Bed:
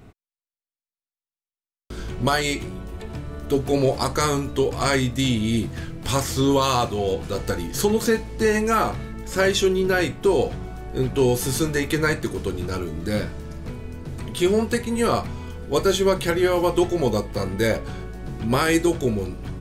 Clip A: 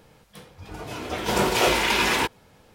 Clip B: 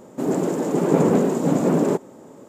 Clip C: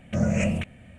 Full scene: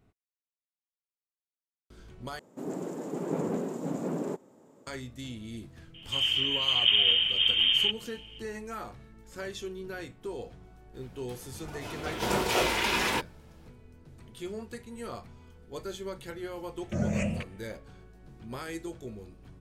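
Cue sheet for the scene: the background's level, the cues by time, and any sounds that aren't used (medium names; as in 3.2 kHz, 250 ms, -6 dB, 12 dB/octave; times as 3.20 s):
bed -19 dB
2.39 s: replace with B -14 dB
5.94 s: add B -6 dB + frequency inversion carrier 3.4 kHz
10.94 s: add A -6 dB
16.79 s: add C -6 dB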